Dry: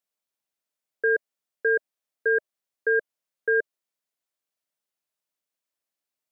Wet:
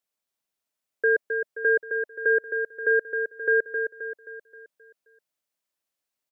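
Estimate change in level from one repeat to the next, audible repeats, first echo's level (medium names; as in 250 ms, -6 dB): -6.5 dB, 5, -6.5 dB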